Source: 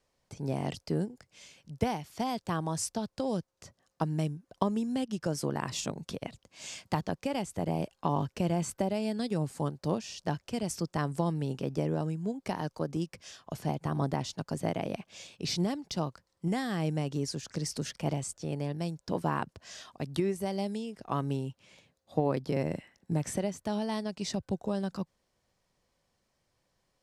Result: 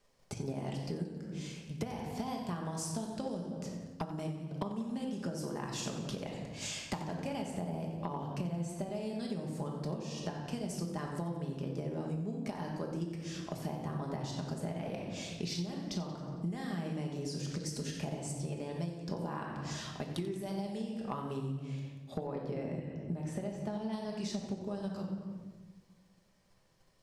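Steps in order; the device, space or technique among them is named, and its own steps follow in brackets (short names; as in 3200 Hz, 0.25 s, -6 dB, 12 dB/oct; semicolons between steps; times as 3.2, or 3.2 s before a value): 22.26–23.93 high shelf 4300 Hz -10 dB; shoebox room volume 500 m³, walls mixed, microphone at 1.3 m; drum-bus smash (transient shaper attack +6 dB, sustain +1 dB; compressor 6:1, threshold -36 dBFS, peak gain reduction 19 dB; soft clip -24 dBFS, distortion -25 dB); warbling echo 91 ms, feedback 59%, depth 100 cents, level -14 dB; gain +1 dB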